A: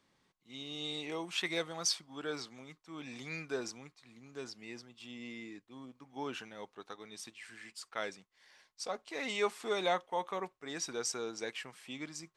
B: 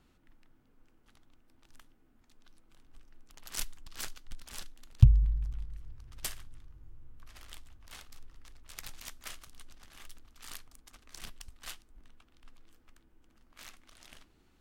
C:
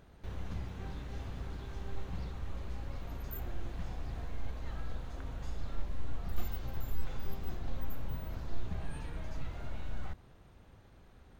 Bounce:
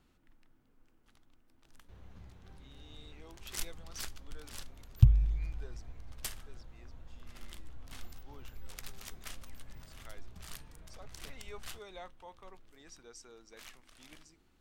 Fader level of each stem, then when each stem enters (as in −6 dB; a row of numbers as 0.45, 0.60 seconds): −16.5, −2.5, −13.5 decibels; 2.10, 0.00, 1.65 seconds